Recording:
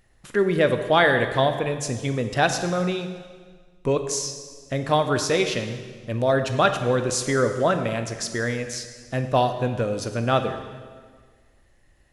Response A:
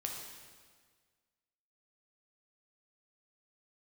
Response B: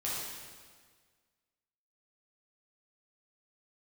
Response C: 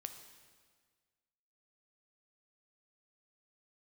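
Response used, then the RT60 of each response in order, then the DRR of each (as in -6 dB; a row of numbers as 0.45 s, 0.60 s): C; 1.6 s, 1.6 s, 1.6 s; 0.0 dB, -7.5 dB, 7.0 dB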